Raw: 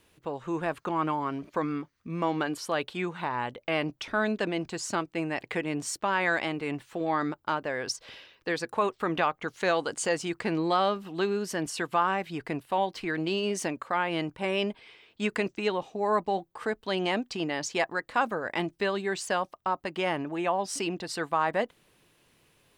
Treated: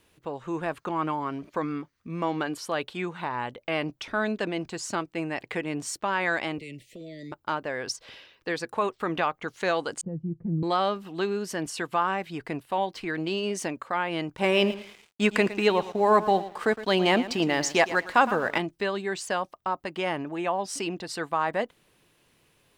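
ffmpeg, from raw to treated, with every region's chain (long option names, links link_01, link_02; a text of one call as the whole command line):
ffmpeg -i in.wav -filter_complex "[0:a]asettb=1/sr,asplit=3[link_01][link_02][link_03];[link_01]atrim=end=6.584[link_04];[link_02]atrim=start=6.58:end=7.32,asetpts=PTS-STARTPTS,afade=type=in:duration=0.004:curve=qsin,afade=type=out:start_time=0.736:duration=0.004:curve=qsin,asuperstop=centerf=1100:order=20:qfactor=0.9,acrossover=split=140|3000[link_05][link_06][link_07];[link_06]acompressor=threshold=-42dB:ratio=4:attack=3.2:release=140:knee=2.83:detection=peak[link_08];[link_05][link_08][link_07]amix=inputs=3:normalize=0[link_09];[link_03]atrim=start=7.316[link_10];[link_04][link_09]acrossfade=duration=0.004:curve1=hsin:curve2=qsin[link_11];[link_11][link_10]acrossfade=duration=0.004:curve1=qsin:curve2=hsin,asettb=1/sr,asplit=3[link_12][link_13][link_14];[link_12]atrim=end=10.014[link_15];[link_13]atrim=start=10.01:end=10.63,asetpts=PTS-STARTPTS,afade=type=in:duration=0.004:curve=qsin,afade=type=out:start_time=0.616:duration=0.004:curve=qsin,lowpass=frequency=160:width_type=q:width=1.7,aecho=1:1:5.8:0.84,atrim=end_sample=27342[link_16];[link_14]atrim=start=10.626[link_17];[link_15][link_16]acrossfade=duration=0.004:curve1=hsin:curve2=qsin[link_18];[link_18][link_17]acrossfade=duration=0.004:curve1=qsin:curve2=hsin,asettb=1/sr,asplit=3[link_19][link_20][link_21];[link_19]atrim=end=14.364[link_22];[link_20]atrim=start=14.36:end=18.58,asetpts=PTS-STARTPTS,afade=type=in:duration=0.004:curve=qsin,afade=type=out:start_time=4.216:duration=0.004:curve=qsin,aecho=1:1:112|224|336:0.2|0.0579|0.0168,atrim=end_sample=186102,acontrast=64,aeval=exprs='sgn(val(0))*max(abs(val(0))-0.00376,0)':channel_layout=same[link_23];[link_21]atrim=start=18.576[link_24];[link_22][link_23]acrossfade=duration=0.004:curve1=hsin:curve2=qsin[link_25];[link_25][link_24]acrossfade=duration=0.004:curve1=qsin:curve2=hsin" out.wav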